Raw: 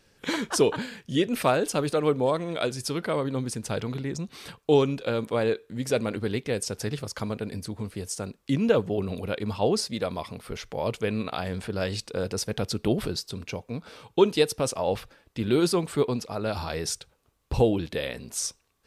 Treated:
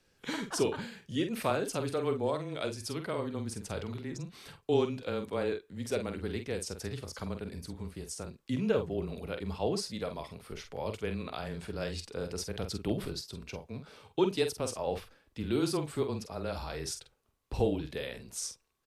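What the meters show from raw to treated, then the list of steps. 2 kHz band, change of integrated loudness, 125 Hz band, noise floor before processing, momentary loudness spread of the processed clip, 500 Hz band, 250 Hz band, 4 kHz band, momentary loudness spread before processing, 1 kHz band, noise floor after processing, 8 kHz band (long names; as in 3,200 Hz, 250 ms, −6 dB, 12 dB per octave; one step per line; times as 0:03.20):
−7.5 dB, −7.5 dB, −7.0 dB, −67 dBFS, 12 LU, −7.5 dB, −7.0 dB, −7.5 dB, 12 LU, −7.5 dB, −71 dBFS, −7.5 dB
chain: frequency shifter −18 Hz
double-tracking delay 47 ms −8 dB
level −8 dB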